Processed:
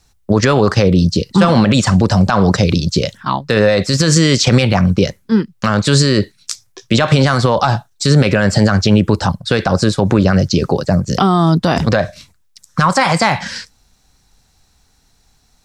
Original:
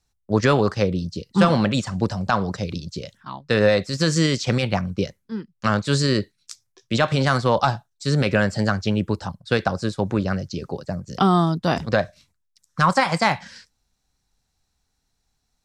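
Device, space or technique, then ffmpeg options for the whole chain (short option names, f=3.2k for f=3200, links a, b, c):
loud club master: -af "acompressor=threshold=-22dB:ratio=2,asoftclip=type=hard:threshold=-9dB,alimiter=level_in=18dB:limit=-1dB:release=50:level=0:latency=1,volume=-1dB"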